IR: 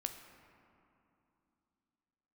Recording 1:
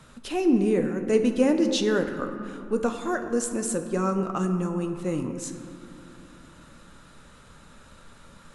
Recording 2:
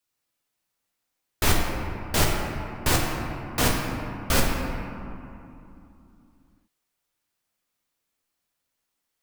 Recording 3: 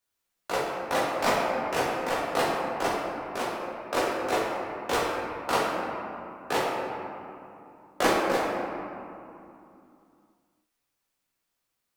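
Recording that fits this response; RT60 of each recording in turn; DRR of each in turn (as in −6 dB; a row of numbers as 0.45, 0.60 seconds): 1; 2.8, 2.8, 2.8 seconds; 5.5, −2.5, −7.0 decibels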